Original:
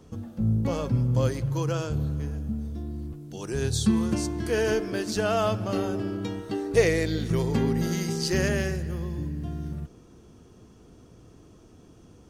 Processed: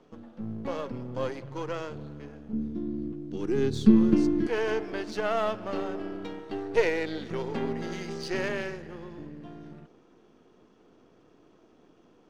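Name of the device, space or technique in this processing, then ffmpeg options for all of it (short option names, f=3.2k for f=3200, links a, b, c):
crystal radio: -filter_complex "[0:a]highpass=280,lowpass=3.4k,aeval=exprs='if(lt(val(0),0),0.447*val(0),val(0))':c=same,asettb=1/sr,asplit=3[a][b][c];[a]atrim=end=2.534[d];[b]atrim=start=2.53:end=4.47,asetpts=PTS-STARTPTS,afade=t=in:d=0.004:c=qsin,afade=t=out:st=1.936:d=0.004:c=qsin,lowshelf=f=440:t=q:w=1.5:g=11[e];[c]atrim=start=4.466[f];[d][e]acrossfade=d=0.004:c1=hsin:c2=qsin[g];[g][f]acrossfade=d=0.004:c1=qsin:c2=hsin"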